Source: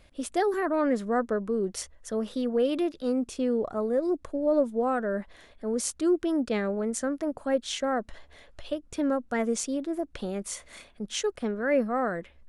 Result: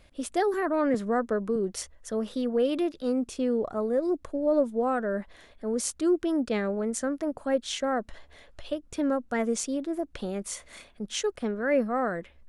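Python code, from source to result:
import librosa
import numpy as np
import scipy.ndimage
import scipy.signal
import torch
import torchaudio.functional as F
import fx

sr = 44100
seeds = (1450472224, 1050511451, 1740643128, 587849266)

y = fx.band_squash(x, sr, depth_pct=40, at=(0.94, 1.56))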